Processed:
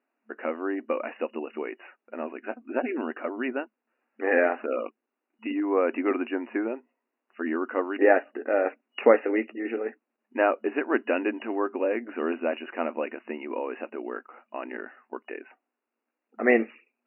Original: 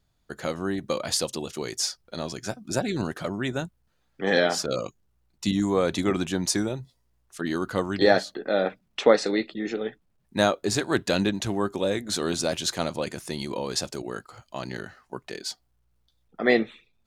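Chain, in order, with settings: FFT band-pass 220–2900 Hz

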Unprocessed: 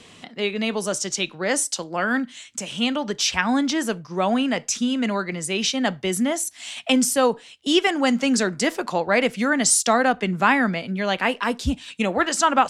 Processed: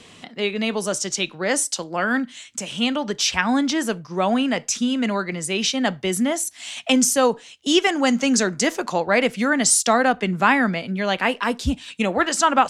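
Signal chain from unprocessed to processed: 6.73–9.04 s: peaking EQ 6.4 kHz +7.5 dB 0.27 oct; trim +1 dB

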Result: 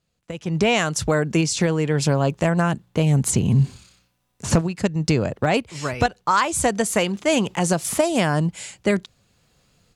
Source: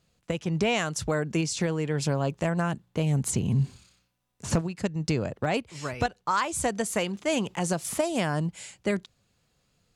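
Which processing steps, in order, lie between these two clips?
level rider gain up to 15 dB; trim -5.5 dB

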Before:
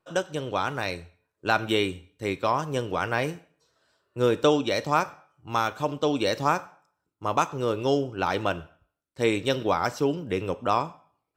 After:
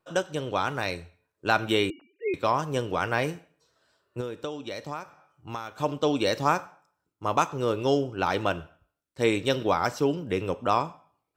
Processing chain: 1.90–2.34 s: formants replaced by sine waves; 4.20–5.78 s: compression 5:1, threshold -33 dBFS, peak gain reduction 15.5 dB

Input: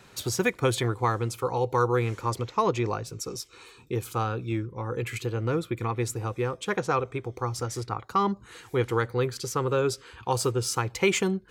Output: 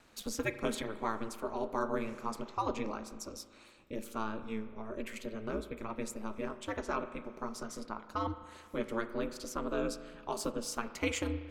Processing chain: flange 0.21 Hz, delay 1.3 ms, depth 7.6 ms, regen -75%; ring modulator 110 Hz; spring tank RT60 1.7 s, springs 37 ms, chirp 45 ms, DRR 11 dB; trim -2.5 dB

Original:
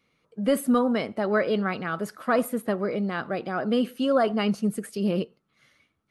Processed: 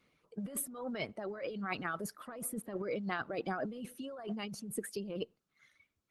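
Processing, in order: reverb removal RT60 1.6 s; compressor with a negative ratio -33 dBFS, ratio -1; trim -6.5 dB; Opus 20 kbps 48 kHz

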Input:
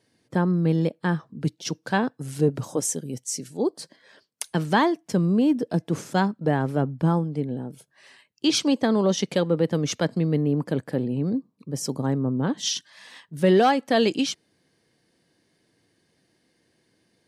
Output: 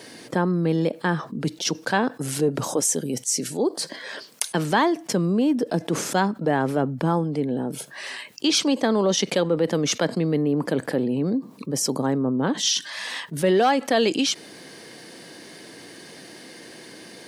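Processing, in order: Bessel high-pass 260 Hz, order 2; level flattener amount 50%

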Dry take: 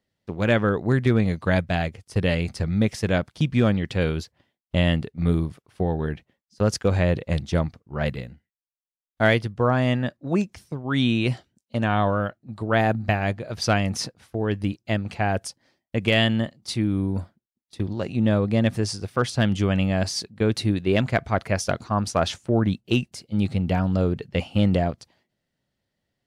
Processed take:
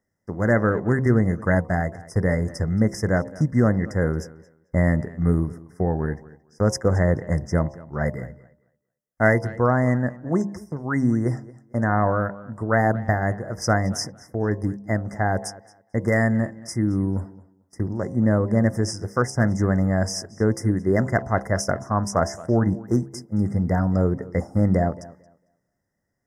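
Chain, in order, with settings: brick-wall FIR band-stop 2.1–4.9 kHz; de-hum 66.92 Hz, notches 16; tape echo 223 ms, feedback 21%, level -18.5 dB, low-pass 5.3 kHz; trim +1.5 dB

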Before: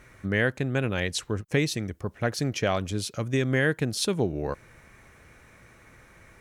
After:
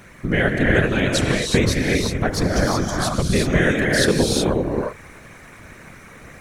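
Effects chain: 2.52–2.98 s: static phaser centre 1.1 kHz, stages 4; in parallel at -2 dB: compression, threshold -32 dBFS, peak gain reduction 12.5 dB; on the sum: gated-style reverb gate 400 ms rising, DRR -1 dB; whisper effect; trim +3 dB

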